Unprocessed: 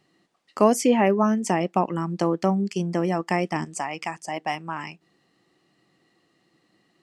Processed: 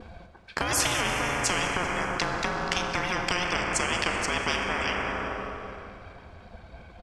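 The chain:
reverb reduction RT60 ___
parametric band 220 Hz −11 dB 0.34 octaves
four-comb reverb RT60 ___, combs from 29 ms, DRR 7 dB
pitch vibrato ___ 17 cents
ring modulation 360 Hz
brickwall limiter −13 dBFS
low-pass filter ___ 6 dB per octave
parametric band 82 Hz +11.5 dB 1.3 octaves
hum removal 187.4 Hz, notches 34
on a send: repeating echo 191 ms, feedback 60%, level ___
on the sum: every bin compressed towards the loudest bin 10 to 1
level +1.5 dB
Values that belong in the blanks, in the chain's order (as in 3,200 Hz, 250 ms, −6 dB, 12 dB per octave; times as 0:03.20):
1.3 s, 2.5 s, 0.4 Hz, 1,100 Hz, −21 dB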